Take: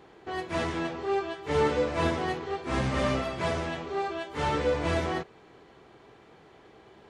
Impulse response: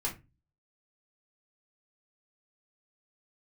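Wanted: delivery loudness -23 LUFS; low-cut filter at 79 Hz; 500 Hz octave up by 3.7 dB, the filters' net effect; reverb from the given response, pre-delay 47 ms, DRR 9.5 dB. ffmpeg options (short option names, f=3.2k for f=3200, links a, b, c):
-filter_complex "[0:a]highpass=79,equalizer=f=500:t=o:g=4.5,asplit=2[a][b];[1:a]atrim=start_sample=2205,adelay=47[c];[b][c]afir=irnorm=-1:irlink=0,volume=-13dB[d];[a][d]amix=inputs=2:normalize=0,volume=4dB"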